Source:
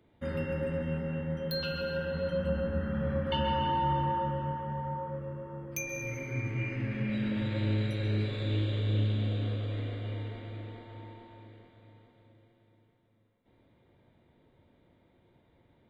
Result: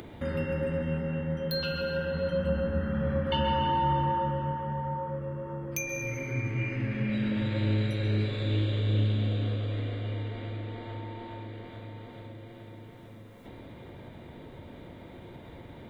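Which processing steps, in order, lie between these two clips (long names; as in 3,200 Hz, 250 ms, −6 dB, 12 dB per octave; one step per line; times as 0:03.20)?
upward compression, threshold −33 dBFS
level +2.5 dB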